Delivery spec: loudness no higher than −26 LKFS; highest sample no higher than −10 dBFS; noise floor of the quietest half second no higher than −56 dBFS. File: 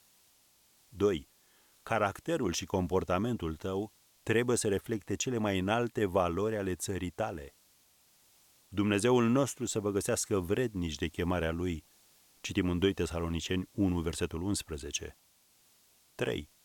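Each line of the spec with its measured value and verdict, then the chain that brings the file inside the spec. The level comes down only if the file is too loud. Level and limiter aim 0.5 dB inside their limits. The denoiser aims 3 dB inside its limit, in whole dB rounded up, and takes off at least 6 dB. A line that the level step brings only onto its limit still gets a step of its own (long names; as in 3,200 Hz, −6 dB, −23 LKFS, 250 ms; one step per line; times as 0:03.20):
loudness −32.5 LKFS: in spec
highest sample −14.0 dBFS: in spec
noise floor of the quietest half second −67 dBFS: in spec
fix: no processing needed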